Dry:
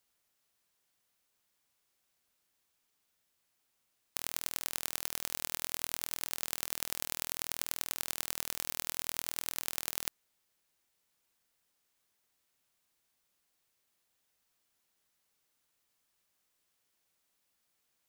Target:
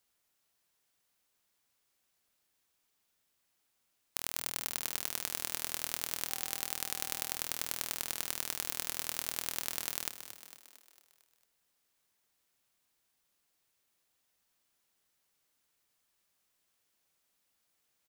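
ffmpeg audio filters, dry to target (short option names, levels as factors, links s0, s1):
-filter_complex "[0:a]asplit=7[s0][s1][s2][s3][s4][s5][s6];[s1]adelay=226,afreqshift=68,volume=0.282[s7];[s2]adelay=452,afreqshift=136,volume=0.155[s8];[s3]adelay=678,afreqshift=204,volume=0.0851[s9];[s4]adelay=904,afreqshift=272,volume=0.0468[s10];[s5]adelay=1130,afreqshift=340,volume=0.0257[s11];[s6]adelay=1356,afreqshift=408,volume=0.0141[s12];[s0][s7][s8][s9][s10][s11][s12]amix=inputs=7:normalize=0,asettb=1/sr,asplit=3[s13][s14][s15];[s13]atrim=end=6.294[s16];[s14]atrim=start=6.29:end=7.37,asetpts=PTS-STARTPTS,afade=t=in:d=0.004:c=qsin,afade=t=out:st=1.076:d=0.004:c=qsin,aeval=exprs='val(0)+0.00158*sin(2*PI*780*n/s)':c=same[s17];[s15]atrim=start=7.366[s18];[s16][s17]acrossfade=d=0.004:c1=hsin:c2=qsin[s19];[s19][s18]acrossfade=d=0.004:c1=qsin:c2=hsin"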